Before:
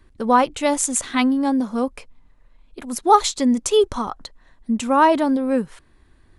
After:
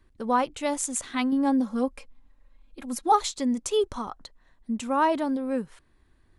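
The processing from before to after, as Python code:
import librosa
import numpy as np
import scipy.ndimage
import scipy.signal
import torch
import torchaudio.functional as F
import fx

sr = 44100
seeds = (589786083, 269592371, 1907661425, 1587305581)

y = fx.comb(x, sr, ms=3.7, depth=0.76, at=(1.32, 3.12))
y = y * 10.0 ** (-8.0 / 20.0)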